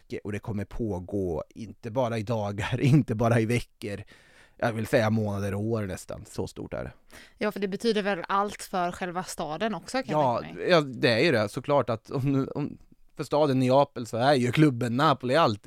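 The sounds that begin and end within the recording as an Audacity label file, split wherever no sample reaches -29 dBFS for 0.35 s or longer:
4.620000	6.870000	sound
7.410000	12.710000	sound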